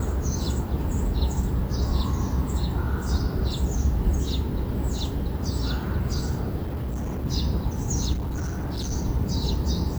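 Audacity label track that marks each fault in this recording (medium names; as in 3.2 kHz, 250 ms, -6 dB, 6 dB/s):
6.620000	7.260000	clipped -26 dBFS
8.130000	8.920000	clipped -25.5 dBFS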